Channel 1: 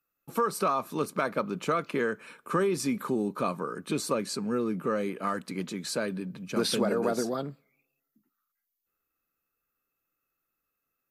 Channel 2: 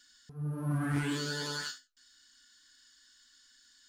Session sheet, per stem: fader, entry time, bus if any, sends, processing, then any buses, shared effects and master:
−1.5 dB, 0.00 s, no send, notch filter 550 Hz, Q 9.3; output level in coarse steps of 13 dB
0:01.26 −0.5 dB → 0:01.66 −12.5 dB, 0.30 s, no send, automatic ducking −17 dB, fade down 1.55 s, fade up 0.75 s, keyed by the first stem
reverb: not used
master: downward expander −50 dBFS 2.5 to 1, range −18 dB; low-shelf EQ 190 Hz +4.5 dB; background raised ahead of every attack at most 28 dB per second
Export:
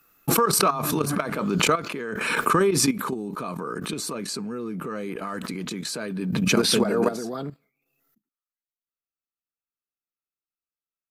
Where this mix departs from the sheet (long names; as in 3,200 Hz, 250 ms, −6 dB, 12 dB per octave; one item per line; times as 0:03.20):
stem 1 −1.5 dB → +7.5 dB
master: missing low-shelf EQ 190 Hz +4.5 dB